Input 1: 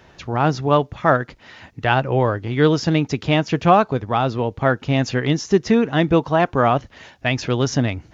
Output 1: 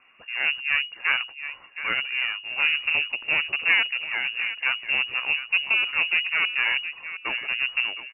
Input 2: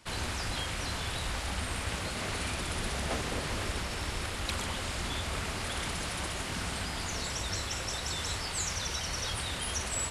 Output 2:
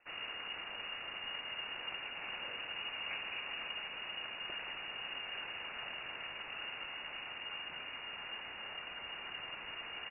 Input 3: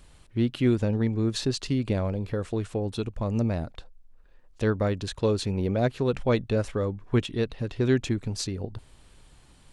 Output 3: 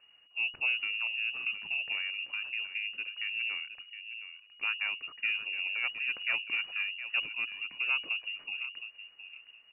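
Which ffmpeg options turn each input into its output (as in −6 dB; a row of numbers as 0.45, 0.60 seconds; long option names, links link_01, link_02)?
-filter_complex "[0:a]asplit=2[link_01][link_02];[link_02]adelay=716,lowpass=frequency=1300:poles=1,volume=-10dB,asplit=2[link_03][link_04];[link_04]adelay=716,lowpass=frequency=1300:poles=1,volume=0.21,asplit=2[link_05][link_06];[link_06]adelay=716,lowpass=frequency=1300:poles=1,volume=0.21[link_07];[link_01][link_03][link_05][link_07]amix=inputs=4:normalize=0,aeval=exprs='0.944*(cos(1*acos(clip(val(0)/0.944,-1,1)))-cos(1*PI/2))+0.133*(cos(6*acos(clip(val(0)/0.944,-1,1)))-cos(6*PI/2))':channel_layout=same,lowpass=frequency=2500:width_type=q:width=0.5098,lowpass=frequency=2500:width_type=q:width=0.6013,lowpass=frequency=2500:width_type=q:width=0.9,lowpass=frequency=2500:width_type=q:width=2.563,afreqshift=-2900,volume=-8.5dB"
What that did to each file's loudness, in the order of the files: −4.0, −8.0, −5.0 LU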